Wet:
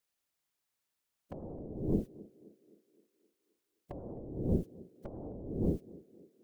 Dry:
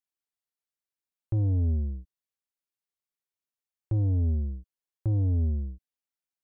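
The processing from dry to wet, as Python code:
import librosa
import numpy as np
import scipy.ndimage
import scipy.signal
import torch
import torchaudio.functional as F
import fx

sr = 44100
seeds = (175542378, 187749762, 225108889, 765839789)

y = fx.spec_clip(x, sr, under_db=25)
y = fx.over_compress(y, sr, threshold_db=-34.0, ratio=-0.5)
y = fx.whisperise(y, sr, seeds[0])
y = fx.echo_banded(y, sr, ms=261, feedback_pct=55, hz=400.0, wet_db=-18)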